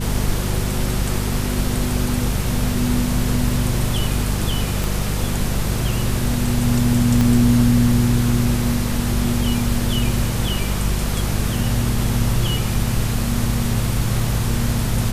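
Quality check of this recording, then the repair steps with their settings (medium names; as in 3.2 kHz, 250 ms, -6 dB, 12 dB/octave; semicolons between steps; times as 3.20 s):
hum 50 Hz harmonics 4 -23 dBFS
4.84 s: pop
7.21 s: pop -6 dBFS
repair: de-click; de-hum 50 Hz, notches 4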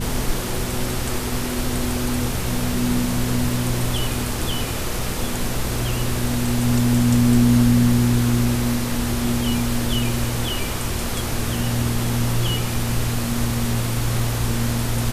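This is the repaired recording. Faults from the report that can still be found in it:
4.84 s: pop
7.21 s: pop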